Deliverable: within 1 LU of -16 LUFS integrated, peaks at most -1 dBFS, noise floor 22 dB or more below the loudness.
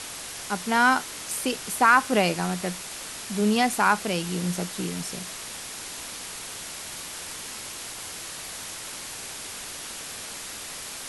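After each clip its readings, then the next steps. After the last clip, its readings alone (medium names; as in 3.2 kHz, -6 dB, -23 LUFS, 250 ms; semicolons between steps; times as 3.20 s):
noise floor -38 dBFS; noise floor target -50 dBFS; loudness -27.5 LUFS; peak level -6.5 dBFS; loudness target -16.0 LUFS
-> noise print and reduce 12 dB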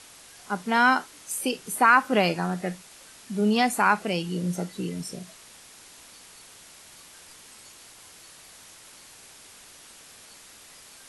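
noise floor -50 dBFS; loudness -24.5 LUFS; peak level -7.0 dBFS; loudness target -16.0 LUFS
-> trim +8.5 dB; peak limiter -1 dBFS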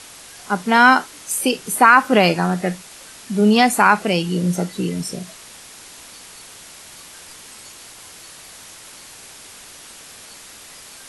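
loudness -16.5 LUFS; peak level -1.0 dBFS; noise floor -41 dBFS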